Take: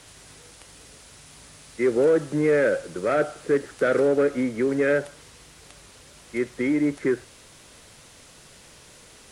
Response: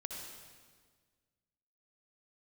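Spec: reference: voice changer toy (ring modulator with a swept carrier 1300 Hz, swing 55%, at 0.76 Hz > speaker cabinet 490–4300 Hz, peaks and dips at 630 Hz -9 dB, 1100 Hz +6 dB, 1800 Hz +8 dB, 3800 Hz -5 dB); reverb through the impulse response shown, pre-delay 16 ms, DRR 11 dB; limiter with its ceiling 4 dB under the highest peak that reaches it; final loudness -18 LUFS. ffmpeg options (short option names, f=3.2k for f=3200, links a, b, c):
-filter_complex "[0:a]alimiter=limit=-15.5dB:level=0:latency=1,asplit=2[a][b];[1:a]atrim=start_sample=2205,adelay=16[c];[b][c]afir=irnorm=-1:irlink=0,volume=-10dB[d];[a][d]amix=inputs=2:normalize=0,aeval=exprs='val(0)*sin(2*PI*1300*n/s+1300*0.55/0.76*sin(2*PI*0.76*n/s))':c=same,highpass=490,equalizer=f=630:t=q:w=4:g=-9,equalizer=f=1.1k:t=q:w=4:g=6,equalizer=f=1.8k:t=q:w=4:g=8,equalizer=f=3.8k:t=q:w=4:g=-5,lowpass=f=4.3k:w=0.5412,lowpass=f=4.3k:w=1.3066,volume=5.5dB"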